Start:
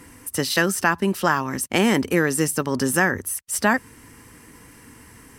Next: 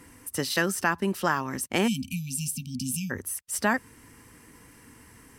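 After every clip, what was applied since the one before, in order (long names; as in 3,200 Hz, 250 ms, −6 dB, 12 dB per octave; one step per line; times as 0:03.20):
time-frequency box erased 0:01.88–0:03.10, 260–2,300 Hz
level −5.5 dB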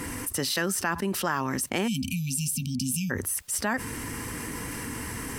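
envelope flattener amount 70%
level −4.5 dB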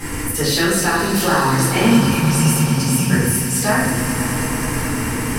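flanger 0.44 Hz, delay 1.2 ms, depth 8.9 ms, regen +75%
echo that builds up and dies away 107 ms, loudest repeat 5, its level −14 dB
rectangular room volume 280 cubic metres, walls mixed, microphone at 3.9 metres
level +4 dB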